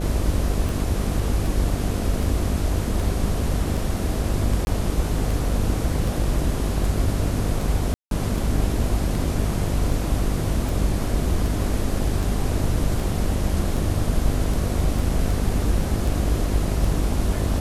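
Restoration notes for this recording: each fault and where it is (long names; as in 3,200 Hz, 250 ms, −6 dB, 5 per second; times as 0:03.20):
mains buzz 50 Hz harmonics 14 −26 dBFS
scratch tick 78 rpm
0:04.65–0:04.67: drop-out 21 ms
0:07.94–0:08.11: drop-out 172 ms
0:14.99: drop-out 2.4 ms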